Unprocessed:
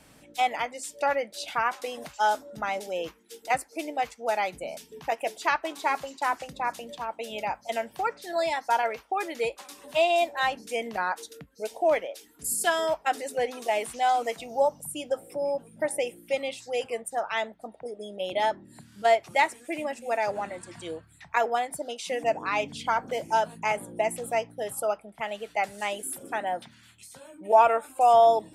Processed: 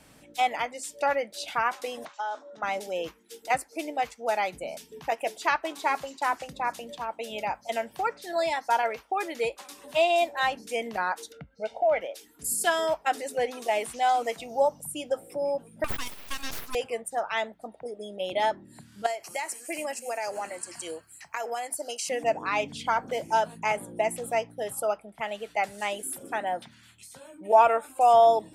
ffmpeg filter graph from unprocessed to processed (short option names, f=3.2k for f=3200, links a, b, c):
-filter_complex "[0:a]asettb=1/sr,asplit=3[a][b][c];[a]atrim=end=2.054[d];[b]atrim=start=2.05:end=2.63,asetpts=PTS-STARTPTS,afade=t=in:d=0.004:c=qsin,afade=t=out:st=0.576:d=0.004:c=qsin,bandreject=f=2.1k:w=26,acompressor=threshold=-29dB:ratio=6:attack=3.2:release=140:knee=1:detection=peak,highpass=430,equalizer=f=1.1k:t=q:w=4:g=5,equalizer=f=2.7k:t=q:w=4:g=-6,equalizer=f=4.8k:t=q:w=4:g=-8,lowpass=f=5.7k:w=0.5412,lowpass=f=5.7k:w=1.3066[e];[c]atrim=start=2.626[f];[d][e]acrossfade=d=0.004:c1=hsin:c2=qsin[g];[g][f]acrossfade=d=0.004:c1=qsin:c2=hsin,asettb=1/sr,asplit=3[h][i][j];[h]atrim=end=11.324[k];[i]atrim=start=11.32:end=12.01,asetpts=PTS-STARTPTS,afade=t=in:d=0.004:c=qsin,afade=t=out:st=0.686:d=0.004:c=qsin,lowpass=2.8k,aecho=1:1:1.4:0.81,atrim=end_sample=30429,acompressor=threshold=-23dB:ratio=2:attack=3.2:release=140:knee=1:detection=peak[l];[j]atrim=start=12.006[m];[k][l]acrossfade=d=0.004:c1=hsin:c2=qsin[n];[n][m]acrossfade=d=0.004:c1=qsin:c2=hsin,asettb=1/sr,asplit=3[o][p][q];[o]atrim=end=15.844[r];[p]atrim=start=15.84:end=16.75,asetpts=PTS-STARTPTS,afade=t=in:d=0.004:c=qsin,afade=t=out:st=0.906:d=0.004:c=qsin,aemphasis=mode=production:type=riaa,acompressor=threshold=-25dB:ratio=6:attack=3.2:release=140:knee=1:detection=peak,aeval=exprs='abs(val(0))':c=same[s];[q]atrim=start=16.746[t];[r][s]acrossfade=d=0.004:c1=hsin:c2=qsin[u];[u][t]acrossfade=d=0.004:c1=qsin:c2=hsin,asettb=1/sr,asplit=3[v][w][x];[v]atrim=end=19.064[y];[w]atrim=start=19.06:end=22.09,asetpts=PTS-STARTPTS,afade=t=in:d=0.004:c=qsin,afade=t=out:st=3.026:d=0.004:c=qsin,bass=f=250:g=-12,treble=f=4k:g=12,acompressor=threshold=-27dB:ratio=12:attack=3.2:release=140:knee=1:detection=peak,asuperstop=centerf=3600:order=4:qfactor=4.7[z];[x]atrim=start=22.086[aa];[y][z]acrossfade=d=0.004:c1=hsin:c2=qsin[ab];[ab][aa]acrossfade=d=0.004:c1=qsin:c2=hsin"